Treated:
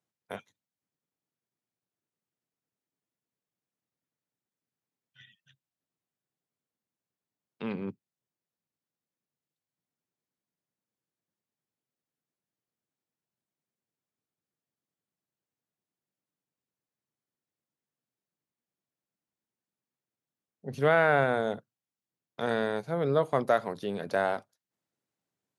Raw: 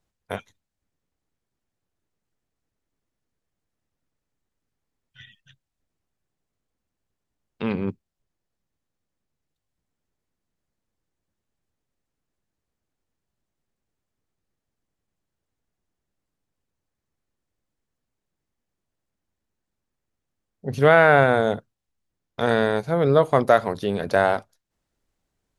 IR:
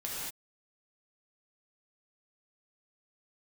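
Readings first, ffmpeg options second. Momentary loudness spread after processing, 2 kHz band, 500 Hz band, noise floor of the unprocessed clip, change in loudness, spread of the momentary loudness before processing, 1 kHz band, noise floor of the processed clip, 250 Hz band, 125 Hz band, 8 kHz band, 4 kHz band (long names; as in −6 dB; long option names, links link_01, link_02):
20 LU, −8.5 dB, −8.5 dB, −83 dBFS, −8.5 dB, 19 LU, −8.5 dB, below −85 dBFS, −8.5 dB, −10.0 dB, can't be measured, −8.5 dB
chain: -af "highpass=frequency=120:width=0.5412,highpass=frequency=120:width=1.3066,volume=-8.5dB"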